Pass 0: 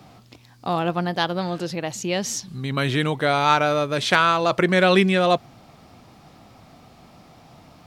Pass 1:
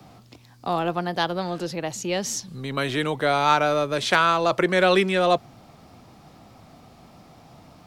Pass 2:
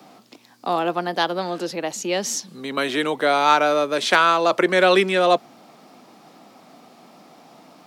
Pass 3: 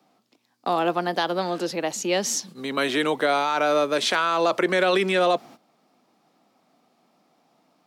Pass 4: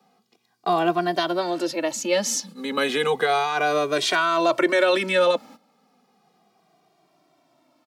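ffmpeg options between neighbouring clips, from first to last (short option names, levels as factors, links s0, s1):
-filter_complex "[0:a]equalizer=f=2600:w=0.64:g=-2.5,acrossover=split=240|680|5500[s0][s1][s2][s3];[s0]asoftclip=type=tanh:threshold=0.0178[s4];[s4][s1][s2][s3]amix=inputs=4:normalize=0"
-af "highpass=f=210:w=0.5412,highpass=f=210:w=1.3066,volume=1.41"
-af "agate=range=0.158:threshold=0.0112:ratio=16:detection=peak,alimiter=limit=0.251:level=0:latency=1"
-filter_complex "[0:a]asplit=2[s0][s1];[s1]adelay=2,afreqshift=-0.33[s2];[s0][s2]amix=inputs=2:normalize=1,volume=1.58"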